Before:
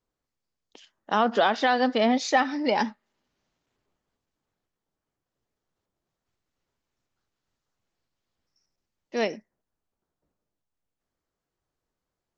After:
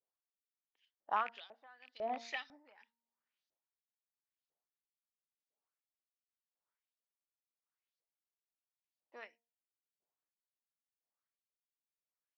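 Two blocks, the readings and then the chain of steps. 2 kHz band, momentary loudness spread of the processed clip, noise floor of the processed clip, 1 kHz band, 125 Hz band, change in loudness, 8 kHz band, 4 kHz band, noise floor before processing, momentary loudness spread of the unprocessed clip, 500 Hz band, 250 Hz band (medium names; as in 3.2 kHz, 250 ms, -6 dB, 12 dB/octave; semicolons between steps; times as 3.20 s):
-18.0 dB, 21 LU, under -85 dBFS, -16.0 dB, under -30 dB, -15.5 dB, no reading, -20.5 dB, under -85 dBFS, 8 LU, -22.0 dB, -31.0 dB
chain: rattle on loud lows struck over -30 dBFS, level -16 dBFS; LFO band-pass saw up 2 Hz 500–5300 Hz; de-hum 232.8 Hz, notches 4; logarithmic tremolo 0.89 Hz, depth 25 dB; trim -5.5 dB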